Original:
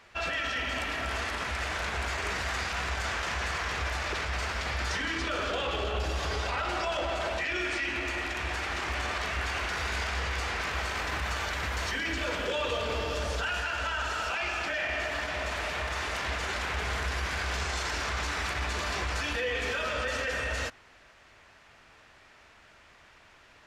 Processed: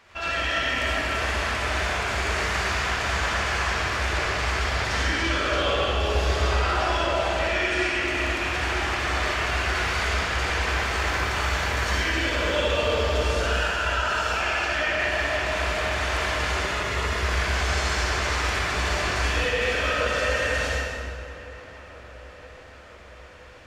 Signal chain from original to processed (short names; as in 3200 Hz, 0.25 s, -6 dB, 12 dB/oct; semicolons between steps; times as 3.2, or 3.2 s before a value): 16.54–17.18 notch comb 780 Hz; darkening echo 0.967 s, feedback 69%, low-pass 1900 Hz, level -17.5 dB; reverb RT60 1.9 s, pre-delay 48 ms, DRR -6 dB